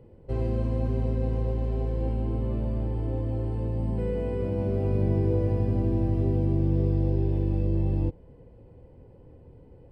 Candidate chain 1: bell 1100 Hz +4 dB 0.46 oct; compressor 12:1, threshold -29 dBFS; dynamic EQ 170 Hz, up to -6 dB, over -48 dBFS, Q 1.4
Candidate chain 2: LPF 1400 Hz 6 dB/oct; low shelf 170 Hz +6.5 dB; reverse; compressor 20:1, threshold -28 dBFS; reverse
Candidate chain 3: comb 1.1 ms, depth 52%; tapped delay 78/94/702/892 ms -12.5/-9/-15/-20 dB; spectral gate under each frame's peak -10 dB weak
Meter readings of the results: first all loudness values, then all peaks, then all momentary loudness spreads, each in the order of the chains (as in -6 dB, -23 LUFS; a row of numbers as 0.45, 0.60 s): -36.5, -34.5, -35.0 LUFS; -21.5, -18.5, -20.0 dBFS; 16, 15, 6 LU